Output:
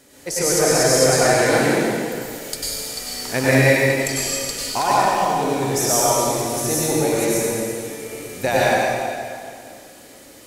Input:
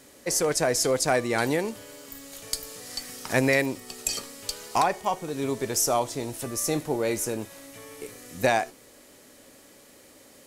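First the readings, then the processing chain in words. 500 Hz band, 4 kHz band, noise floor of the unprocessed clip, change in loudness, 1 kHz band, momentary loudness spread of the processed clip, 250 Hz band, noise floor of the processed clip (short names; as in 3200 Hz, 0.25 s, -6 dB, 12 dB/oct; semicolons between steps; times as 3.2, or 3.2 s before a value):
+8.5 dB, +8.5 dB, -53 dBFS, +8.0 dB, +8.5 dB, 13 LU, +8.0 dB, -44 dBFS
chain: notch 1100 Hz, Q 16; plate-style reverb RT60 2.2 s, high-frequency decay 0.95×, pre-delay 85 ms, DRR -8 dB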